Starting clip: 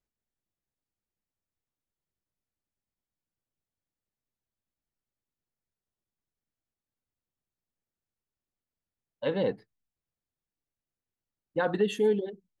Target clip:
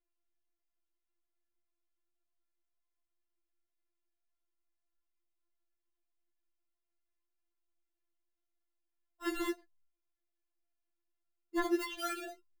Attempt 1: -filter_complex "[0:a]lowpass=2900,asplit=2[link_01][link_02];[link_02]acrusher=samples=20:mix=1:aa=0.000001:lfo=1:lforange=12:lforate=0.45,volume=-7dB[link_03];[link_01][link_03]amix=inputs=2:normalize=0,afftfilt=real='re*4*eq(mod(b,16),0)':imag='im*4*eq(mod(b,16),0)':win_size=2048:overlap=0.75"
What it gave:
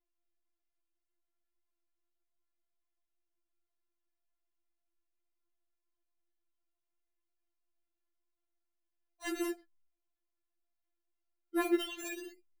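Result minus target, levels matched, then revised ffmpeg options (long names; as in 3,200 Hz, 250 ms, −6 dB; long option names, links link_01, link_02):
sample-and-hold swept by an LFO: distortion −19 dB
-filter_complex "[0:a]lowpass=2900,asplit=2[link_01][link_02];[link_02]acrusher=samples=43:mix=1:aa=0.000001:lfo=1:lforange=25.8:lforate=0.45,volume=-7dB[link_03];[link_01][link_03]amix=inputs=2:normalize=0,afftfilt=real='re*4*eq(mod(b,16),0)':imag='im*4*eq(mod(b,16),0)':win_size=2048:overlap=0.75"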